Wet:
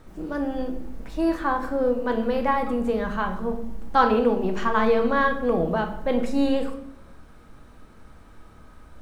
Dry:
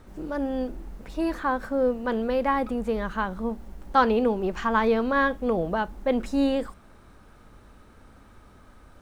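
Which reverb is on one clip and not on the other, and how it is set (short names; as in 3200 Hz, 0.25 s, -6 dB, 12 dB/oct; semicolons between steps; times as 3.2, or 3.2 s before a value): shoebox room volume 180 m³, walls mixed, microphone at 0.61 m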